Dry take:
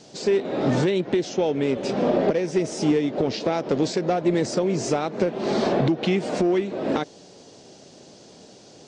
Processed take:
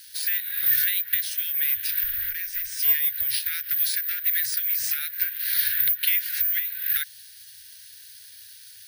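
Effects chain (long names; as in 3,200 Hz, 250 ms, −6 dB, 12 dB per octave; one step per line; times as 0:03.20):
octave-band graphic EQ 250/500/1,000/4,000/8,000 Hz +9/−9/−7/+10/+4 dB
0:02.03–0:02.79: tube saturation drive 20 dB, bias 0.5
bad sample-rate conversion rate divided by 3×, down filtered, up zero stuff
Chebyshev band-stop filter 100–1,500 Hz, order 5
parametric band 1,700 Hz +14.5 dB 0.78 octaves
level −6.5 dB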